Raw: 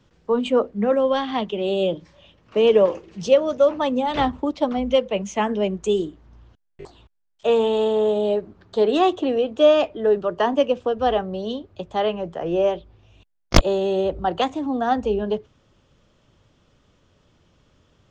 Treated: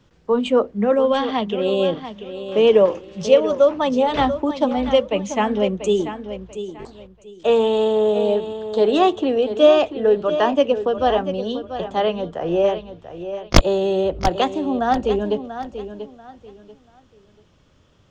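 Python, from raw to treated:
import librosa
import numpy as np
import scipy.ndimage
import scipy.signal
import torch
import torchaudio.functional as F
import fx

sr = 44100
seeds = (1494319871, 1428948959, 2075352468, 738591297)

y = fx.echo_feedback(x, sr, ms=688, feedback_pct=26, wet_db=-11.0)
y = F.gain(torch.from_numpy(y), 2.0).numpy()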